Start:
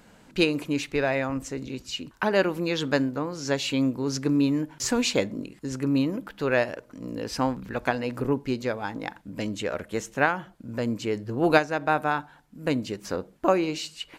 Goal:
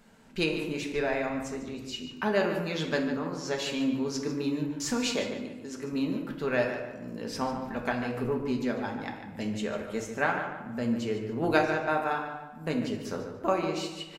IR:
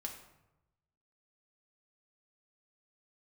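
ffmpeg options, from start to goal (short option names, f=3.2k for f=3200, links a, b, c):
-filter_complex "[0:a]asettb=1/sr,asplit=3[a][b][c];[a]atrim=end=4.934[d];[b]atrim=start=4.93:end=5.93,asetpts=PTS-STARTPTS,afade=t=in:d=0.004:c=qsin,afade=t=out:st=0.996:d=0.004:c=qsin,lowshelf=f=160:g=-10.5[e];[c]atrim=start=5.926[f];[d][e]acrossfade=d=0.004:c1=hsin:c2=qsin[g];[g][f]acrossfade=d=0.004:c1=qsin:c2=hsin,asplit=2[h][i];[i]adelay=146,lowpass=f=3.8k:p=1,volume=-8.5dB,asplit=2[j][k];[k]adelay=146,lowpass=f=3.8k:p=1,volume=0.37,asplit=2[l][m];[m]adelay=146,lowpass=f=3.8k:p=1,volume=0.37,asplit=2[n][o];[o]adelay=146,lowpass=f=3.8k:p=1,volume=0.37[p];[h][j][l][n][p]amix=inputs=5:normalize=0[q];[1:a]atrim=start_sample=2205[r];[q][r]afir=irnorm=-1:irlink=0,volume=-2.5dB"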